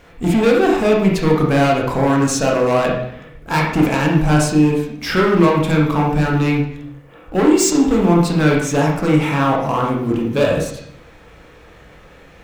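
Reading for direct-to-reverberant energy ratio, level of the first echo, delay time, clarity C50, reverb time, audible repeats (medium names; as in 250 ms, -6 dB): -2.0 dB, no echo, no echo, 3.0 dB, 0.65 s, no echo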